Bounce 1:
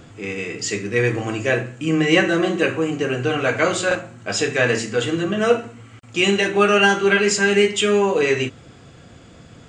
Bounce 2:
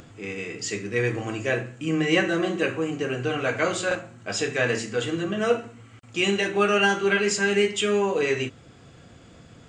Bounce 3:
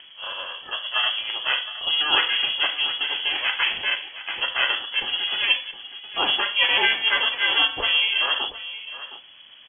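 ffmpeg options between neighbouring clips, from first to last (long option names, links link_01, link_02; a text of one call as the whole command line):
ffmpeg -i in.wav -af "acompressor=mode=upward:threshold=-39dB:ratio=2.5,volume=-5.5dB" out.wav
ffmpeg -i in.wav -af "aeval=exprs='val(0)*sin(2*PI*230*n/s)':channel_layout=same,aecho=1:1:715:0.2,lowpass=frequency=2900:width_type=q:width=0.5098,lowpass=frequency=2900:width_type=q:width=0.6013,lowpass=frequency=2900:width_type=q:width=0.9,lowpass=frequency=2900:width_type=q:width=2.563,afreqshift=-3400,volume=4dB" out.wav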